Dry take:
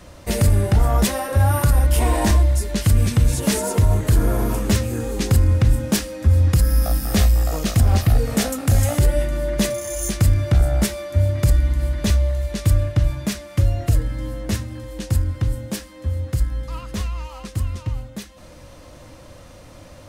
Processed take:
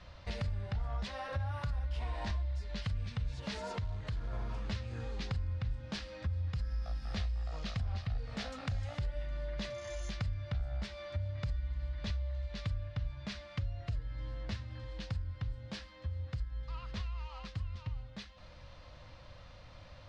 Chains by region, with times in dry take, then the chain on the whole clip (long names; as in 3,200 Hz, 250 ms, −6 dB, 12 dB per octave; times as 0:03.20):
0:03.74–0:04.33: downward compressor 1.5 to 1, threshold −24 dBFS + log-companded quantiser 6 bits
whole clip: Chebyshev low-pass filter 4,400 Hz, order 3; parametric band 320 Hz −14 dB 1.5 octaves; downward compressor 3 to 1, threshold −30 dBFS; level −7 dB